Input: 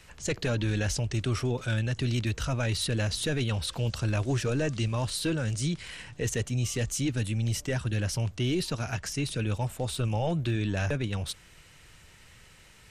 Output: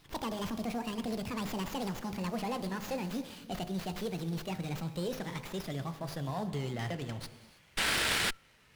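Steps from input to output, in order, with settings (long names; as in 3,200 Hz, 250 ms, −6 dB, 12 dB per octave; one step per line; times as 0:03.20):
gliding playback speed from 197% → 98%
in parallel at −8.5 dB: floating-point word with a short mantissa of 2 bits
on the sum: low-shelf EQ 64 Hz −10.5 dB
on a send at −11.5 dB: convolution reverb, pre-delay 3 ms
on the sum: sound drawn into the spectrogram noise, 0:07.77–0:08.31, 1,300–6,200 Hz −19 dBFS
hum removal 51.47 Hz, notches 27
windowed peak hold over 5 samples
level −9 dB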